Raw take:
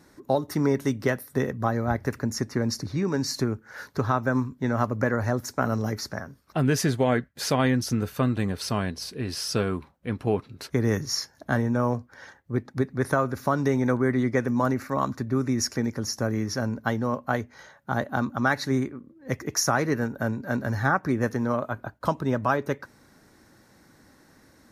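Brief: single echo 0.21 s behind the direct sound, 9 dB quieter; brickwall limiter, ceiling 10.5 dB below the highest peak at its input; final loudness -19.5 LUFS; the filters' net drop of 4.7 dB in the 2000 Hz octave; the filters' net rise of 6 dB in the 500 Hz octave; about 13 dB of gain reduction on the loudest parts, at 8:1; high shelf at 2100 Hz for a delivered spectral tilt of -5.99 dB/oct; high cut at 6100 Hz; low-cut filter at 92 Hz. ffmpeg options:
-af "highpass=92,lowpass=6.1k,equalizer=f=500:t=o:g=8,equalizer=f=2k:t=o:g=-4.5,highshelf=f=2.1k:g=-5.5,acompressor=threshold=-28dB:ratio=8,alimiter=limit=-24dB:level=0:latency=1,aecho=1:1:210:0.355,volume=16dB"

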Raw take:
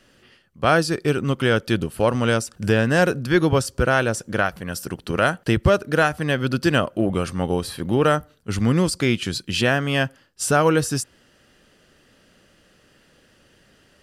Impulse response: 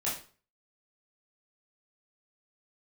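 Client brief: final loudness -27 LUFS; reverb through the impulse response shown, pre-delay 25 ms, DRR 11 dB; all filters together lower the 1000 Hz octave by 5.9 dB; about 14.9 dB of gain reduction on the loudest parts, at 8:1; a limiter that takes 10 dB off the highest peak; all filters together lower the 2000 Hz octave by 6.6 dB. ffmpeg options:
-filter_complex "[0:a]equalizer=f=1k:t=o:g=-6.5,equalizer=f=2k:t=o:g=-6.5,acompressor=threshold=-31dB:ratio=8,alimiter=level_in=4.5dB:limit=-24dB:level=0:latency=1,volume=-4.5dB,asplit=2[a][b];[1:a]atrim=start_sample=2205,adelay=25[c];[b][c]afir=irnorm=-1:irlink=0,volume=-16.5dB[d];[a][d]amix=inputs=2:normalize=0,volume=11.5dB"

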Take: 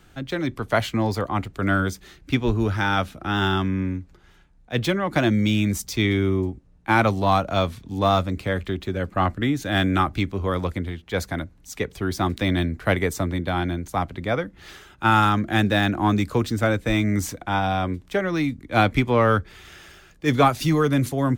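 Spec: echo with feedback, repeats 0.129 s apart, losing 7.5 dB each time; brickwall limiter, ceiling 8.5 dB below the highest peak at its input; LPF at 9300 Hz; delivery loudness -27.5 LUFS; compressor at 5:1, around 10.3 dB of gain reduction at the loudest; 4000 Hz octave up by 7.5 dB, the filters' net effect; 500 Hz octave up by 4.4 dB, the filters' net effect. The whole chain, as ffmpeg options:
-af "lowpass=9.3k,equalizer=f=500:t=o:g=5.5,equalizer=f=4k:t=o:g=9,acompressor=threshold=-21dB:ratio=5,alimiter=limit=-18dB:level=0:latency=1,aecho=1:1:129|258|387|516|645:0.422|0.177|0.0744|0.0312|0.0131,volume=0.5dB"

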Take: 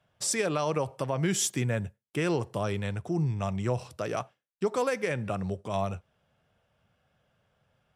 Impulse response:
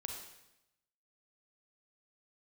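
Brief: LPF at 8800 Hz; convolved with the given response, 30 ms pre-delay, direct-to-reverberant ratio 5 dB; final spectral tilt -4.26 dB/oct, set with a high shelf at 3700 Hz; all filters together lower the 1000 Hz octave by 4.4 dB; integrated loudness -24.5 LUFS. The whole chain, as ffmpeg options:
-filter_complex "[0:a]lowpass=8.8k,equalizer=f=1k:t=o:g=-6.5,highshelf=f=3.7k:g=5.5,asplit=2[a][b];[1:a]atrim=start_sample=2205,adelay=30[c];[b][c]afir=irnorm=-1:irlink=0,volume=-3.5dB[d];[a][d]amix=inputs=2:normalize=0,volume=5dB"

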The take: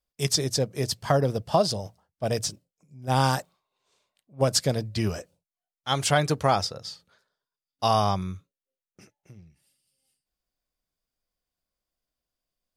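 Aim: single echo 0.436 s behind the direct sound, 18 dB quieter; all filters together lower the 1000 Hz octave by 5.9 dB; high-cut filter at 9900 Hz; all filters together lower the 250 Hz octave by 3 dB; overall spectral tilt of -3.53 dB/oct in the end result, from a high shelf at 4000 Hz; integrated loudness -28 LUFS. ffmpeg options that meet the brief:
-af "lowpass=9.9k,equalizer=f=250:t=o:g=-4,equalizer=f=1k:t=o:g=-8.5,highshelf=f=4k:g=4.5,aecho=1:1:436:0.126,volume=-1dB"

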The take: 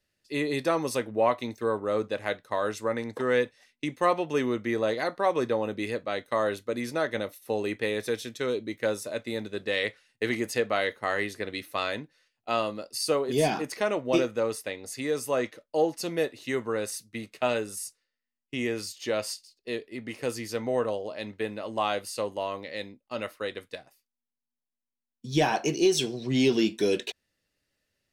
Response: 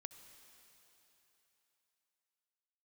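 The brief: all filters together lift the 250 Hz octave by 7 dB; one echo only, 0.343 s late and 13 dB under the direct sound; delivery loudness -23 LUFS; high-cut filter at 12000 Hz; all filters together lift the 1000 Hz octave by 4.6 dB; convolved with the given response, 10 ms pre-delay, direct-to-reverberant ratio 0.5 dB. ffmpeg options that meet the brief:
-filter_complex "[0:a]lowpass=12k,equalizer=f=250:t=o:g=8.5,equalizer=f=1k:t=o:g=5.5,aecho=1:1:343:0.224,asplit=2[a][b];[1:a]atrim=start_sample=2205,adelay=10[c];[b][c]afir=irnorm=-1:irlink=0,volume=5dB[d];[a][d]amix=inputs=2:normalize=0"

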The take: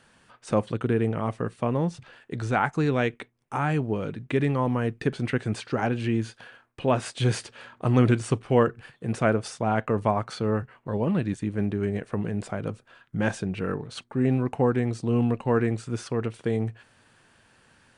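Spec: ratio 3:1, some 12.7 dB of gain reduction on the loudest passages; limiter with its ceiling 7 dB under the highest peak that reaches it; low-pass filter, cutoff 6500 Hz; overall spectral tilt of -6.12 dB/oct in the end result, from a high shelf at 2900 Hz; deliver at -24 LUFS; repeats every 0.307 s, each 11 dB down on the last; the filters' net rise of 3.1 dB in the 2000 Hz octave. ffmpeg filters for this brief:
-af "lowpass=6.5k,equalizer=f=2k:t=o:g=5.5,highshelf=f=2.9k:g=-3.5,acompressor=threshold=-33dB:ratio=3,alimiter=limit=-24dB:level=0:latency=1,aecho=1:1:307|614|921:0.282|0.0789|0.0221,volume=12.5dB"

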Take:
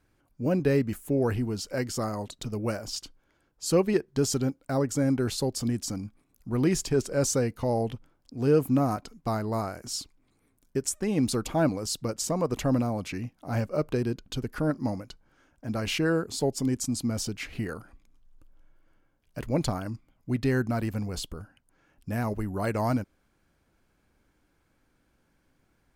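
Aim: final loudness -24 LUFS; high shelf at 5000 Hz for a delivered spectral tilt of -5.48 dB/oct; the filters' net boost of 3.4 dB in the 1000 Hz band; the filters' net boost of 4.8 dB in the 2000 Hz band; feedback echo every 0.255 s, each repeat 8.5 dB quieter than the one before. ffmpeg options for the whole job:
-af "equalizer=f=1k:t=o:g=3.5,equalizer=f=2k:t=o:g=5.5,highshelf=f=5k:g=-3,aecho=1:1:255|510|765|1020:0.376|0.143|0.0543|0.0206,volume=3.5dB"

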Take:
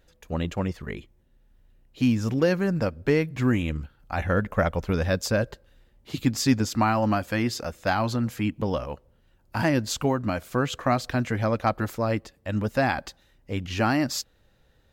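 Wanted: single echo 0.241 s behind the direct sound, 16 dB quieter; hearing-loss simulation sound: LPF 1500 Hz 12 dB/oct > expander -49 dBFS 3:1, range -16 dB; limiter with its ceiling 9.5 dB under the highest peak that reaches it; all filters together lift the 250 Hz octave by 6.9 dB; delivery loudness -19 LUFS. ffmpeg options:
-af "equalizer=f=250:t=o:g=8,alimiter=limit=-12dB:level=0:latency=1,lowpass=1.5k,aecho=1:1:241:0.158,agate=range=-16dB:threshold=-49dB:ratio=3,volume=5dB"

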